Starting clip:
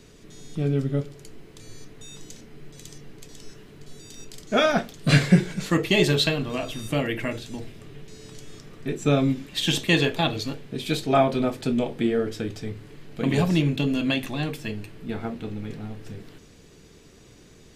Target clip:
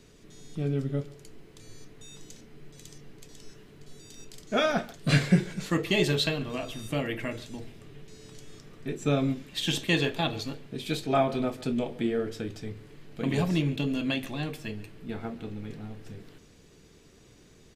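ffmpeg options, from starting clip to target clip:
-filter_complex "[0:a]asplit=2[a][b];[b]adelay=140,highpass=300,lowpass=3.4k,asoftclip=type=hard:threshold=-13dB,volume=-19dB[c];[a][c]amix=inputs=2:normalize=0,volume=-5dB"

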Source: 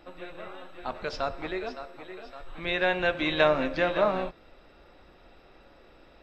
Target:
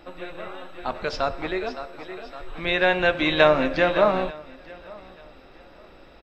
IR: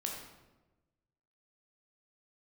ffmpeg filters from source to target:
-af "aecho=1:1:888|1776:0.0708|0.0205,volume=5.5dB"

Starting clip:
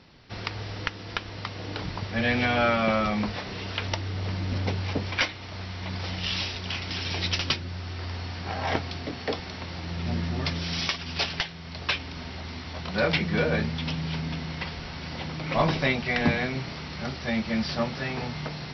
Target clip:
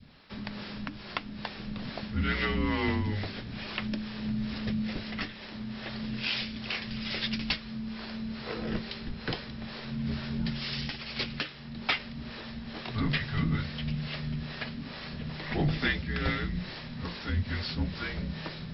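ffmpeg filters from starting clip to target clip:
-filter_complex "[0:a]acrossover=split=490[a][b];[a]aeval=exprs='val(0)*(1-0.7/2+0.7/2*cos(2*PI*2.3*n/s))':c=same[c];[b]aeval=exprs='val(0)*(1-0.7/2-0.7/2*cos(2*PI*2.3*n/s))':c=same[d];[c][d]amix=inputs=2:normalize=0,areverse,acompressor=mode=upward:threshold=-45dB:ratio=2.5,areverse,afreqshift=-310,adynamicequalizer=threshold=0.00447:dfrequency=950:dqfactor=0.95:tfrequency=950:tqfactor=0.95:attack=5:release=100:ratio=0.375:range=3.5:mode=cutabove:tftype=bell"

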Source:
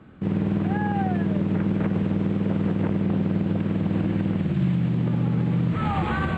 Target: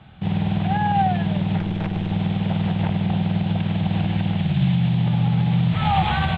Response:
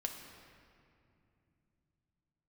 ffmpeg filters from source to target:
-filter_complex "[0:a]firequalizer=gain_entry='entry(160,0);entry(260,-14);entry(500,-10);entry(770,6);entry(1100,-6);entry(3500,10);entry(5700,-8)':delay=0.05:min_phase=1,asettb=1/sr,asplit=3[a][b][c];[a]atrim=end=1.594[d];[b]atrim=start=1.59:end=2.12,asetpts=PTS-STARTPTS,afade=t=in:d=0.004:c=qsin,afade=t=out:st=0.526:d=0.004:c=qsin,aeval=exprs='(tanh(12.6*val(0)+0.5)-tanh(0.5))/12.6':c=same[e];[c]atrim=start=2.116[f];[d][e]acrossfade=d=0.004:c1=hsin:c2=qsin[g];[g][f]acrossfade=d=0.004:c1=qsin:c2=hsin,volume=5dB"

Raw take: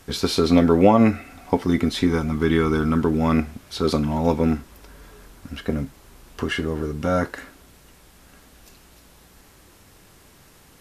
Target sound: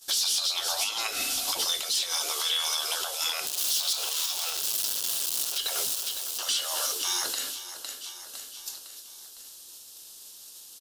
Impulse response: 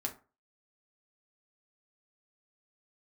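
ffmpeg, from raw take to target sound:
-filter_complex "[0:a]asettb=1/sr,asplit=3[a][b][c];[a]atrim=end=3.464[d];[b]atrim=start=3.46:end=5.58,asetpts=PTS-STARTPTS,afade=t=in:d=0.004:c=qsin,afade=t=out:st=2.116:d=0.004:c=qsin,aeval=exprs='val(0)+0.5*0.0398*sgn(val(0))':c=same[e];[c]atrim=start=5.576[f];[d][e]acrossfade=d=0.004:c1=hsin:c2=qsin[g];[g][f]acrossfade=d=0.004:c1=qsin:c2=hsin,acompressor=threshold=-19dB:ratio=8,afftfilt=real='re*lt(hypot(re,im),0.0794)':imag='im*lt(hypot(re,im),0.0794)':win_size=1024:overlap=0.75,bass=f=250:g=-14,treble=f=4k:g=-8,agate=range=-33dB:threshold=-42dB:ratio=3:detection=peak,aexciter=amount=15:drive=7:freq=3.3k,bandreject=f=60:t=h:w=6,bandreject=f=120:t=h:w=6,bandreject=f=180:t=h:w=6,adynamicequalizer=threshold=0.00631:dfrequency=2900:dqfactor=5.1:tfrequency=2900:tqfactor=5.1:attack=5:release=100:ratio=0.375:range=2:mode=boostabove:tftype=bell,aecho=1:1:507|1014|1521|2028:0.0944|0.0491|0.0255|0.0133,alimiter=level_in=2.5dB:limit=-24dB:level=0:latency=1:release=417,volume=-2.5dB,aeval=exprs='0.112*sin(PI/2*2.24*val(0)/0.112)':c=same"

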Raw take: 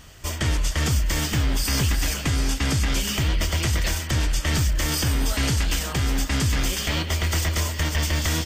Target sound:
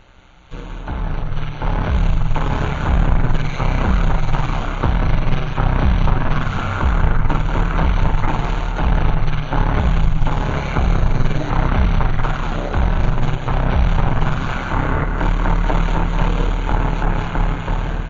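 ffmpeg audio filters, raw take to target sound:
-filter_complex "[0:a]acrossover=split=3200[a][b];[b]acompressor=threshold=-41dB:ratio=4:attack=1:release=60[c];[a][c]amix=inputs=2:normalize=0,highshelf=f=9.7k:g=-11.5,asplit=2[d][e];[e]alimiter=limit=-23.5dB:level=0:latency=1:release=86,volume=-2dB[f];[d][f]amix=inputs=2:normalize=0,dynaudnorm=f=280:g=5:m=10.5dB,aeval=exprs='0.708*(cos(1*acos(clip(val(0)/0.708,-1,1)))-cos(1*PI/2))+0.158*(cos(2*acos(clip(val(0)/0.708,-1,1)))-cos(2*PI/2))':c=same,tremolo=f=280:d=0.667,asetrate=20595,aresample=44100,asplit=2[g][h];[h]aecho=0:1:186:0.422[i];[g][i]amix=inputs=2:normalize=0,volume=-2.5dB"

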